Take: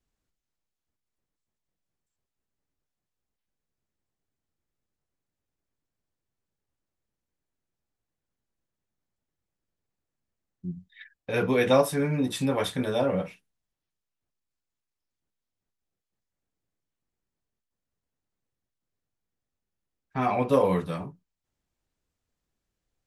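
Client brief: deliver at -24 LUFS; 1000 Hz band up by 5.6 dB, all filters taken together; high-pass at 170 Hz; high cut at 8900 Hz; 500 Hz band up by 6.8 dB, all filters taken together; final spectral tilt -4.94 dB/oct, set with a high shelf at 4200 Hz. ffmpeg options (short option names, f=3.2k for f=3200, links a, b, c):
-af "highpass=170,lowpass=8.9k,equalizer=f=500:t=o:g=6.5,equalizer=f=1k:t=o:g=5,highshelf=f=4.2k:g=-4,volume=-3.5dB"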